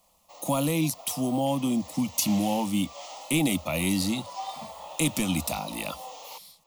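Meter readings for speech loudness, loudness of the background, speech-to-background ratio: -27.5 LUFS, -42.0 LUFS, 14.5 dB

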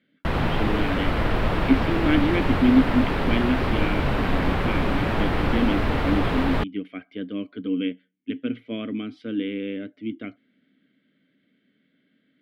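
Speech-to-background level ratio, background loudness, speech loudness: -2.0 dB, -25.0 LUFS, -27.0 LUFS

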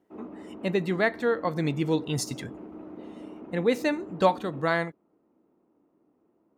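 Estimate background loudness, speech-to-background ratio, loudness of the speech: -43.5 LUFS, 16.0 dB, -27.5 LUFS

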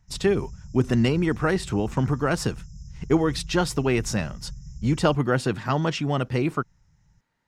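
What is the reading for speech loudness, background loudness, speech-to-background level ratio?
-24.5 LUFS, -42.0 LUFS, 17.5 dB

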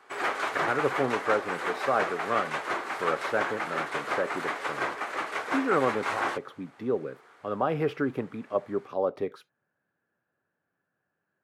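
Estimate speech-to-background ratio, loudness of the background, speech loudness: 0.5 dB, -31.5 LUFS, -31.0 LUFS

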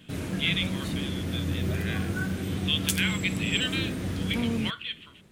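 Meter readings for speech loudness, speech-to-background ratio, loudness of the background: -31.5 LUFS, -1.0 dB, -30.5 LUFS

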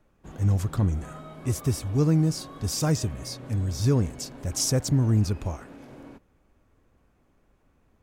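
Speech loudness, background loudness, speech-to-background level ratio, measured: -26.0 LUFS, -44.0 LUFS, 18.0 dB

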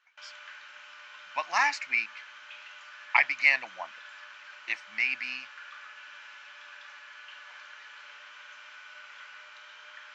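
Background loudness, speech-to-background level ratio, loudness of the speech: -46.0 LUFS, 19.0 dB, -27.0 LUFS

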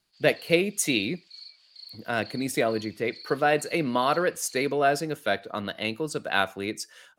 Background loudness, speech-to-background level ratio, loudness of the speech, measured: -45.5 LUFS, 19.0 dB, -26.5 LUFS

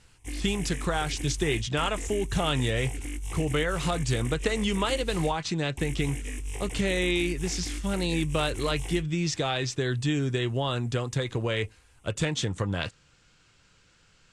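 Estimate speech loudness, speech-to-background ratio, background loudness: -29.0 LUFS, 8.0 dB, -37.0 LUFS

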